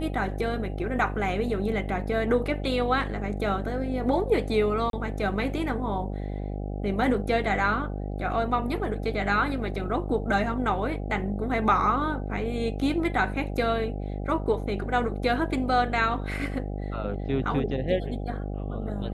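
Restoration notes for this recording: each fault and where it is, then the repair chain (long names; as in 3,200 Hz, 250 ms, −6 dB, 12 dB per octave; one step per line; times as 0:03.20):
mains buzz 50 Hz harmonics 16 −32 dBFS
0:04.90–0:04.93: drop-out 32 ms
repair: hum removal 50 Hz, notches 16
repair the gap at 0:04.90, 32 ms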